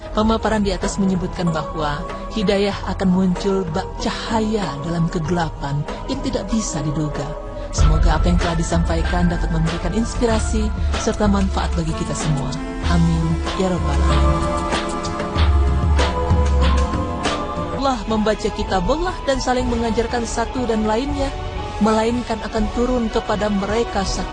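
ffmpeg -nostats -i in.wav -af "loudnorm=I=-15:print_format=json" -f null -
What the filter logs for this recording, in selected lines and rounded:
"input_i" : "-20.2",
"input_tp" : "-6.0",
"input_lra" : "2.0",
"input_thresh" : "-30.2",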